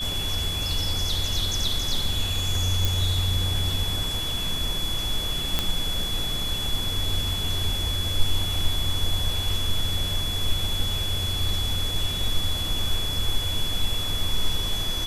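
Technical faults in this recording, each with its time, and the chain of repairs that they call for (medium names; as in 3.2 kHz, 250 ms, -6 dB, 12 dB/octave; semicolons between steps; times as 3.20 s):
whine 3.4 kHz -28 dBFS
2.85 s: pop
5.59 s: pop -7 dBFS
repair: de-click; band-stop 3.4 kHz, Q 30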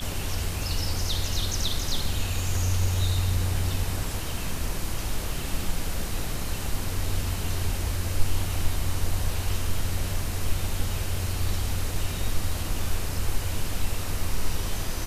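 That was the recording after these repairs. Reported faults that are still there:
nothing left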